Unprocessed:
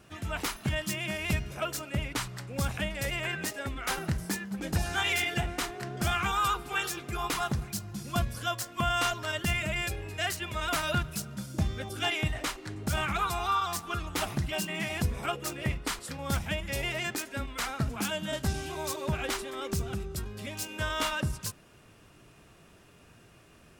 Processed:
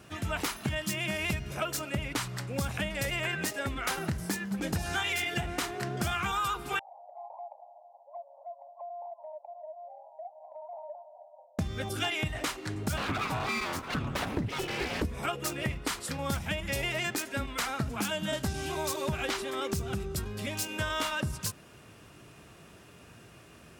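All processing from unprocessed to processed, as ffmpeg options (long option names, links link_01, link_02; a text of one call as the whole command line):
ffmpeg -i in.wav -filter_complex "[0:a]asettb=1/sr,asplit=3[link_01][link_02][link_03];[link_01]atrim=end=6.794[link_04];[link_02]atrim=start=6.79:end=11.59,asetpts=PTS-STARTPTS,afade=type=in:duration=0.004:curve=qsin,afade=type=out:start_time=4.796:duration=0.004:curve=qsin,asuperpass=centerf=720:order=12:qfactor=2,acompressor=threshold=-48dB:ratio=2.5:attack=3.2:release=140:knee=1:detection=peak[link_05];[link_03]atrim=start=11.586[link_06];[link_04][link_05]acrossfade=duration=0.004:curve1=hsin:curve2=qsin[link_07];[link_07][link_06]acrossfade=duration=0.004:curve1=qsin:curve2=hsin,asettb=1/sr,asplit=3[link_08][link_09][link_10];[link_08]atrim=end=12.974[link_11];[link_09]atrim=start=12.97:end=15.05,asetpts=PTS-STARTPTS,afade=type=in:duration=0.004:curve=qsin,afade=type=out:start_time=2.076:duration=0.004:curve=qsin,bass=frequency=250:gain=9,treble=frequency=4000:gain=-11,aeval=exprs='abs(val(0))':channel_layout=same[link_12];[link_10]atrim=start=15.046[link_13];[link_11][link_12]acrossfade=duration=0.004:curve1=hsin:curve2=qsin[link_14];[link_14][link_13]acrossfade=duration=0.004:curve1=qsin:curve2=hsin,asettb=1/sr,asplit=3[link_15][link_16][link_17];[link_15]atrim=end=18.954[link_18];[link_16]atrim=start=18.95:end=19.43,asetpts=PTS-STARTPTS,afade=type=in:duration=0.004:curve=qsin,afade=type=out:start_time=0.476:duration=0.004:curve=qsin,acrossover=split=5700[link_19][link_20];[link_20]acompressor=threshold=-51dB:ratio=4:attack=1:release=60[link_21];[link_19][link_21]amix=inputs=2:normalize=0,highshelf=frequency=4800:gain=5.5[link_22];[link_17]atrim=start=19.426[link_23];[link_18][link_22]acrossfade=duration=0.004:curve1=hsin:curve2=qsin[link_24];[link_24][link_23]acrossfade=duration=0.004:curve1=qsin:curve2=hsin,highpass=57,acompressor=threshold=-32dB:ratio=6,volume=4dB" out.wav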